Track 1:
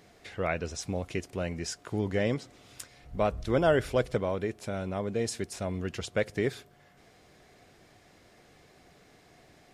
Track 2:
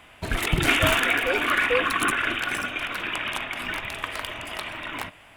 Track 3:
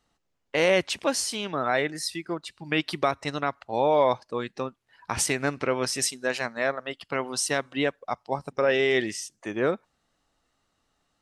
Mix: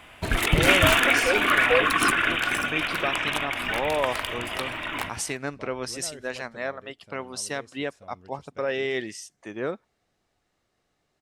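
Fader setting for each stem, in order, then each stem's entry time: −18.5, +2.0, −5.0 decibels; 2.40, 0.00, 0.00 seconds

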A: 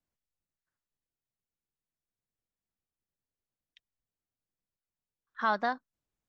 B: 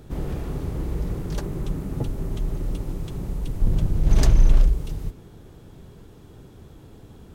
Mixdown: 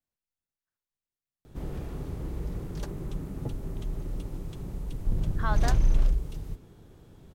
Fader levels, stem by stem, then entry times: −4.5, −7.0 decibels; 0.00, 1.45 seconds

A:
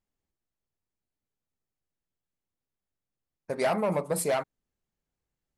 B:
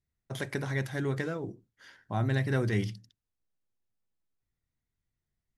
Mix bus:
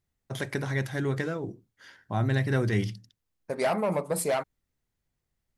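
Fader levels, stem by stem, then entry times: 0.0, +2.5 decibels; 0.00, 0.00 seconds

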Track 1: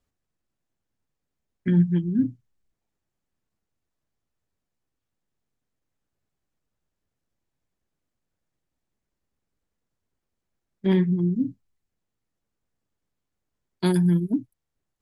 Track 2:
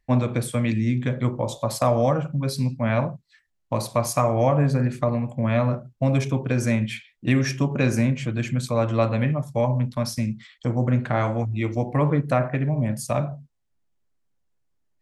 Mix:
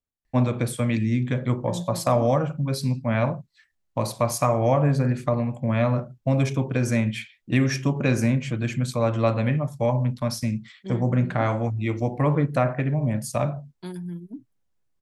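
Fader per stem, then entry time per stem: −14.0, −0.5 decibels; 0.00, 0.25 seconds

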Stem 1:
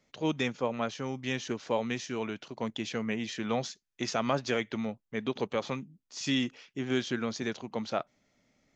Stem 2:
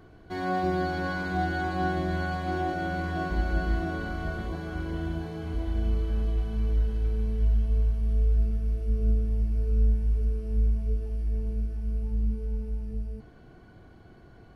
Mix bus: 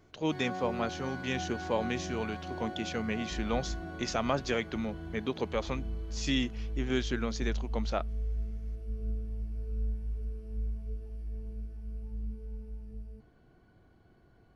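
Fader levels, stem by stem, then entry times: −1.0, −10.5 decibels; 0.00, 0.00 seconds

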